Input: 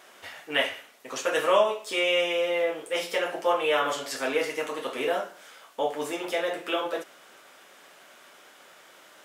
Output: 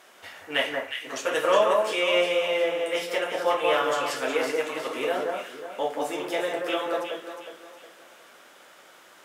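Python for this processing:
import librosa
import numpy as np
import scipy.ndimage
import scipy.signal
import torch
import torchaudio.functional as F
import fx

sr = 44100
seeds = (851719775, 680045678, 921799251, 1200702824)

y = fx.cheby_harmonics(x, sr, harmonics=(7,), levels_db=(-35,), full_scale_db=-9.0)
y = fx.echo_alternate(y, sr, ms=181, hz=1700.0, feedback_pct=60, wet_db=-2)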